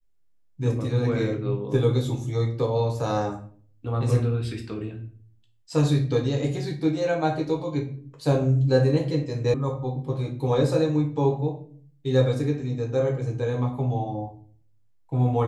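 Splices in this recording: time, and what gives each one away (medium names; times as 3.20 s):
9.54 s: sound stops dead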